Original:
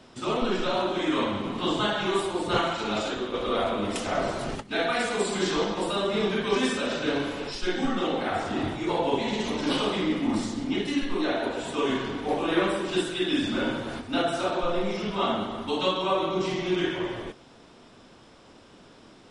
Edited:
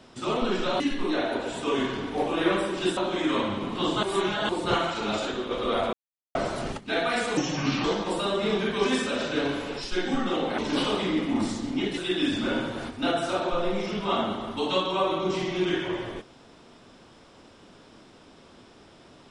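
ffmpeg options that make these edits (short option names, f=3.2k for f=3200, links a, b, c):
-filter_complex "[0:a]asplit=11[a][b][c][d][e][f][g][h][i][j][k];[a]atrim=end=0.802[l];[b]atrim=start=10.908:end=13.082[m];[c]atrim=start=0.798:end=1.862[n];[d]atrim=start=1.858:end=2.322,asetpts=PTS-STARTPTS,areverse[o];[e]atrim=start=2.318:end=3.76,asetpts=PTS-STARTPTS,afade=t=out:st=1.438:d=0.004:c=hsin[p];[f]atrim=start=3.76:end=4.18,asetpts=PTS-STARTPTS,volume=0[q];[g]atrim=start=4.18:end=5.204,asetpts=PTS-STARTPTS,afade=t=in:d=0.004:c=hsin[r];[h]atrim=start=5.2:end=5.55,asetpts=PTS-STARTPTS,asetrate=32634,aresample=44100,atrim=end_sample=20858,asetpts=PTS-STARTPTS[s];[i]atrim=start=5.546:end=8.292[t];[j]atrim=start=9.518:end=10.912[u];[k]atrim=start=13.078[v];[l][m]acrossfade=d=0.004:c1=hsin:c2=hsin[w];[w][n]acrossfade=d=0.004:c1=hsin:c2=hsin[x];[x][o]acrossfade=d=0.004:c1=hsin:c2=hsin[y];[p][q][r]concat=n=3:v=0:a=1[z];[y][z]acrossfade=d=0.004:c1=hsin:c2=hsin[aa];[aa][s]acrossfade=d=0.004:c1=hsin:c2=hsin[ab];[ab][t]acrossfade=d=0.004:c1=hsin:c2=hsin[ac];[ac][u]acrossfade=d=0.004:c1=hsin:c2=hsin[ad];[ad][v]acrossfade=d=0.004:c1=hsin:c2=hsin"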